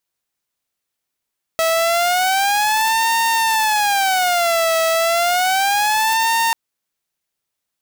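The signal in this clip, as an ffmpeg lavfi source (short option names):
-f lavfi -i "aevalsrc='0.251*(2*mod((783.5*t-131.5/(2*PI*0.31)*sin(2*PI*0.31*t)),1)-1)':d=4.94:s=44100"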